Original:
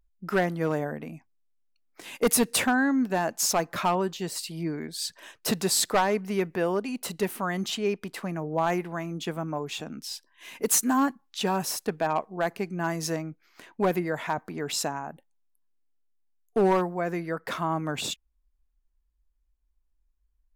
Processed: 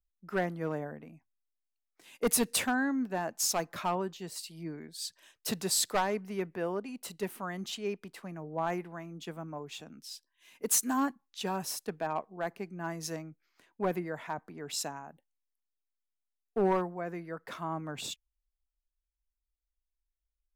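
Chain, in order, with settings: three bands expanded up and down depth 40%; trim -7.5 dB

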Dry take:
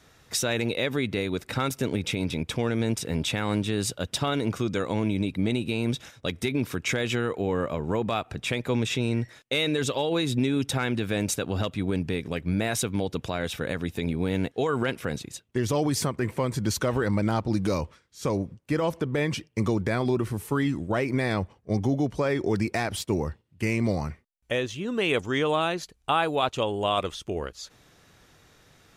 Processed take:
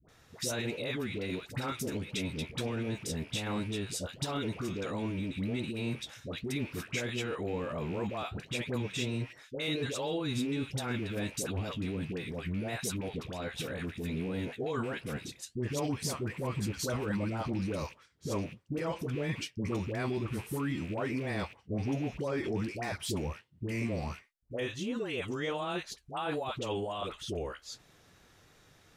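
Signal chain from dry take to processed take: rattle on loud lows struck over -30 dBFS, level -31 dBFS; flange 1.4 Hz, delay 4.7 ms, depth 8.9 ms, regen -58%; peak limiter -25.5 dBFS, peak gain reduction 11 dB; phase dispersion highs, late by 88 ms, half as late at 780 Hz

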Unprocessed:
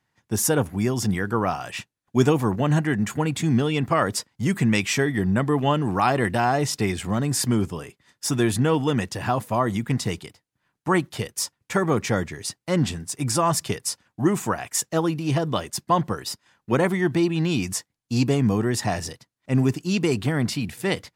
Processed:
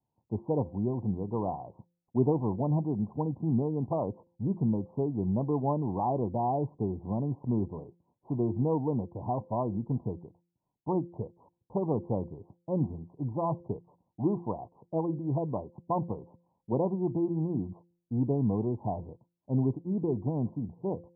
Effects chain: steep low-pass 1 kHz 96 dB/octave; de-hum 172.9 Hz, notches 3; trim -7 dB

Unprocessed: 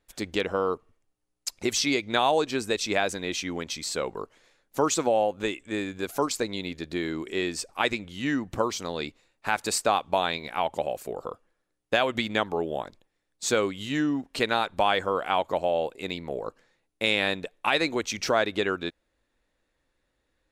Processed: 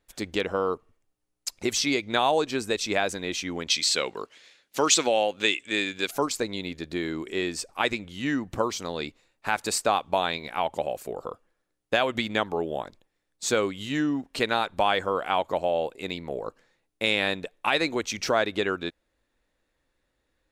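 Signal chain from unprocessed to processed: 3.68–6.11 s: frequency weighting D

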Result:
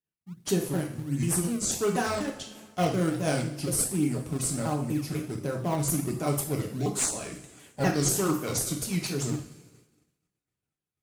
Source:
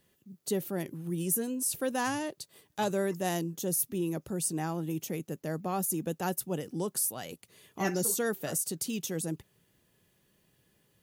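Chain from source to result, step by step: sawtooth pitch modulation -6.5 st, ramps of 245 ms; two-slope reverb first 0.54 s, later 2.9 s, from -21 dB, DRR -0.5 dB; in parallel at -10 dB: decimation with a swept rate 29×, swing 160% 1.4 Hz; on the sum: expander -50 dBFS; trim +1 dB

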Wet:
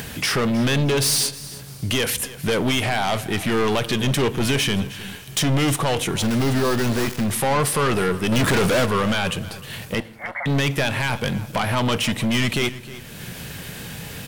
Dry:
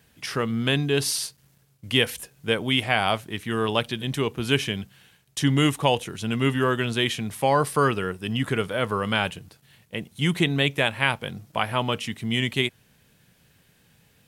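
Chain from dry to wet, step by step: 6.22–7.26 s: dead-time distortion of 0.19 ms; in parallel at -3 dB: upward compressor, threshold -24 dBFS; on the sum: peak limiter -10.5 dBFS, peak gain reduction 10 dB; 8.32–8.86 s: waveshaping leveller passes 3; saturation -25.5 dBFS, distortion -6 dB; 10.00–10.46 s: brick-wall FIR band-pass 540–2300 Hz; feedback delay 312 ms, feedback 33%, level -17 dB; on a send at -17 dB: reverberation RT60 0.80 s, pre-delay 5 ms; on the sum: trim +8.5 dB

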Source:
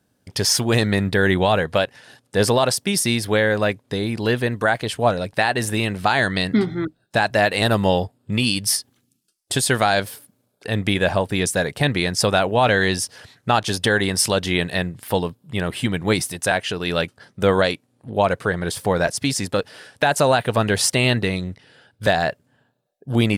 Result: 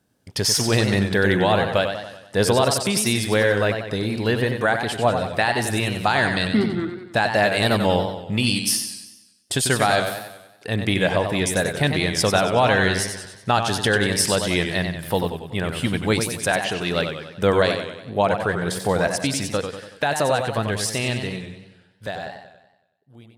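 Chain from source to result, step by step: fade out at the end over 4.50 s; modulated delay 94 ms, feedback 52%, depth 109 cents, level -7 dB; trim -1.5 dB

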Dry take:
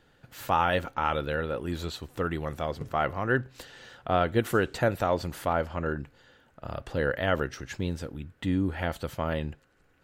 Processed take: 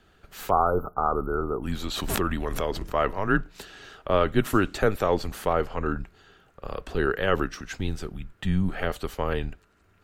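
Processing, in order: 0.50–1.63 s: spectral selection erased 1.6–11 kHz; frequency shift -100 Hz; 1.90–2.94 s: swell ahead of each attack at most 30 dB/s; trim +3 dB

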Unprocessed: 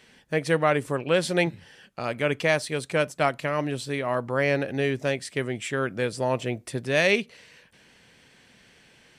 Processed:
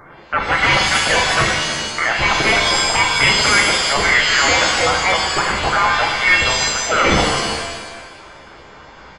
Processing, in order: pitch shift switched off and on +6 st, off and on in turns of 128 ms; in parallel at -9 dB: small samples zeroed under -25 dBFS; on the sum: elliptic high-pass 950 Hz, stop band 40 dB; sine folder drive 15 dB, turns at -8 dBFS; on a send: feedback delay 326 ms, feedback 25%, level -14 dB; on the sum: frequency inversion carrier 3.1 kHz; pitch-shifted reverb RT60 1 s, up +7 st, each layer -2 dB, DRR 1 dB; trim -2.5 dB

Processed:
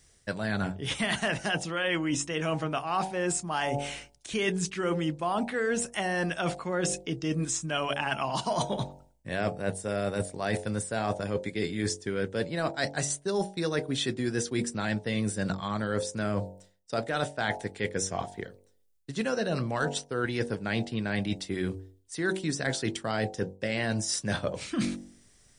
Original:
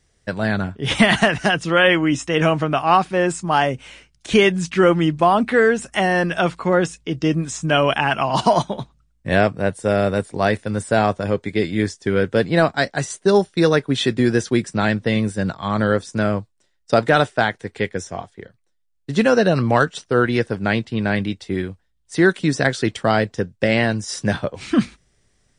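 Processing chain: treble shelf 5.7 kHz +11 dB; de-hum 47.48 Hz, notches 20; reverse; compression 6:1, threshold -27 dBFS, peak gain reduction 17 dB; reverse

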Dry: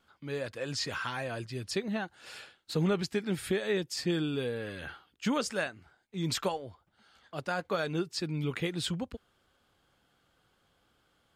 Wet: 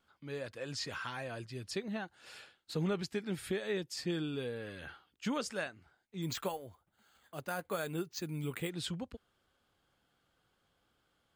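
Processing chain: 6.22–8.70 s: careless resampling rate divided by 4×, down filtered, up hold; trim -5.5 dB

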